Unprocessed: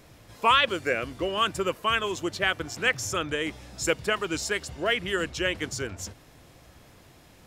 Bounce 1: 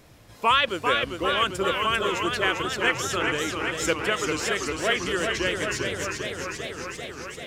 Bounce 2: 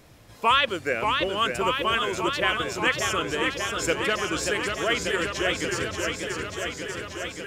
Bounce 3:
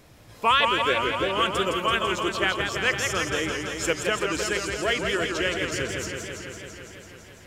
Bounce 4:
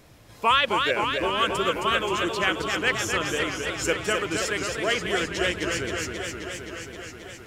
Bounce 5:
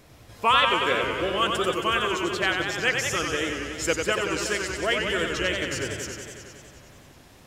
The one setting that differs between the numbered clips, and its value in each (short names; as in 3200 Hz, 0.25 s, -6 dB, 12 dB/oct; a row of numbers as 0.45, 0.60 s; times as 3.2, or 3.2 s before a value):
warbling echo, time: 394, 585, 167, 264, 92 ms